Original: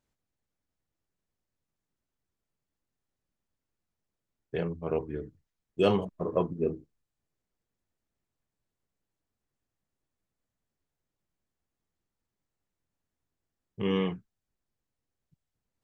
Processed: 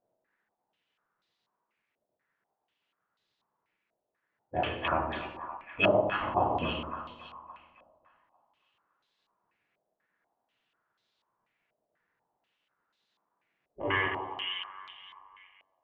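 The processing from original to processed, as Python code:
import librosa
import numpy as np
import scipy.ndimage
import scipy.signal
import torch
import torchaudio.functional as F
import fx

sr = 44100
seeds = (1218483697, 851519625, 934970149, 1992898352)

p1 = fx.peak_eq(x, sr, hz=240.0, db=-9.0, octaves=1.3)
p2 = fx.rev_double_slope(p1, sr, seeds[0], early_s=0.55, late_s=2.3, knee_db=-18, drr_db=0.5)
p3 = fx.spec_gate(p2, sr, threshold_db=-10, keep='weak')
p4 = fx.rider(p3, sr, range_db=10, speed_s=0.5)
p5 = p4 + fx.echo_split(p4, sr, split_hz=830.0, low_ms=92, high_ms=282, feedback_pct=52, wet_db=-6.0, dry=0)
p6 = fx.filter_held_lowpass(p5, sr, hz=4.1, low_hz=620.0, high_hz=3900.0)
y = p6 * librosa.db_to_amplitude(3.5)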